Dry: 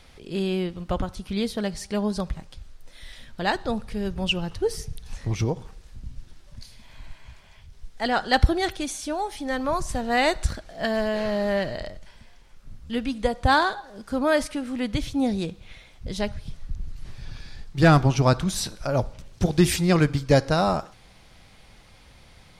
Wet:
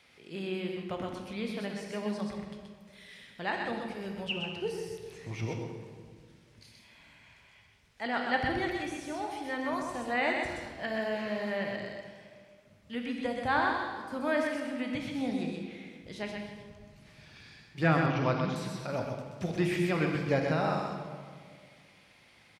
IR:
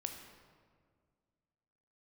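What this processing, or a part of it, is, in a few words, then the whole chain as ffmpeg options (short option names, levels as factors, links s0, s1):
PA in a hall: -filter_complex "[0:a]highpass=150,equalizer=f=2300:t=o:w=0.88:g=7.5,aecho=1:1:127:0.562[s0];[1:a]atrim=start_sample=2205[s1];[s0][s1]afir=irnorm=-1:irlink=0,asettb=1/sr,asplit=3[s2][s3][s4];[s2]atrim=end=18.064[s5];[s3]atrim=start=18.06:end=18.56,asetpts=PTS-STARTPTS,afade=t=in:d=0.004:c=qsin,afade=t=out:st=0.496:d=0.004:c=qsin,lowpass=f=5100:w=0.5412,lowpass=f=5100:w=1.3066[s6];[s4]atrim=start=18.556[s7];[s5][s6]acrossfade=d=0.004:c1=hsin:c2=qsin[s8];[s8][s7]acrossfade=d=0.004:c1=qsin:c2=hsin,acrossover=split=2800[s9][s10];[s10]acompressor=threshold=0.01:ratio=4:attack=1:release=60[s11];[s9][s11]amix=inputs=2:normalize=0,volume=0.398"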